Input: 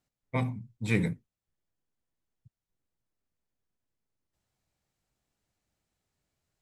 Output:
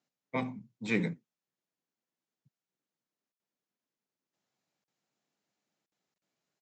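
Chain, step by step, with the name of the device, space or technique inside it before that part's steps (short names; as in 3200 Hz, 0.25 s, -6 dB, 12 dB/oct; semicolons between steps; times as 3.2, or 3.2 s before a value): call with lost packets (HPF 170 Hz 24 dB/oct; downsampling 16000 Hz; packet loss packets of 20 ms bursts); gain -1 dB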